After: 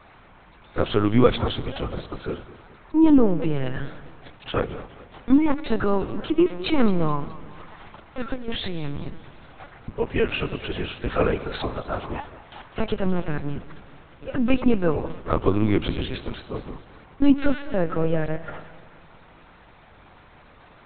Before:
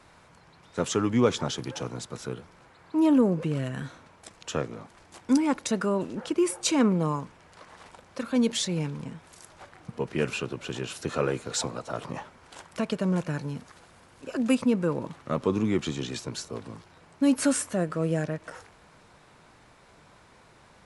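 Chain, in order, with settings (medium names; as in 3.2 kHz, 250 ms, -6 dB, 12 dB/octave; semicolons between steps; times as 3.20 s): 8.34–8.86 s: compressor with a negative ratio -34 dBFS, ratio -1; reverberation RT60 1.6 s, pre-delay 3 ms, DRR 15 dB; LPC vocoder at 8 kHz pitch kept; modulated delay 211 ms, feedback 48%, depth 116 cents, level -18 dB; trim +5.5 dB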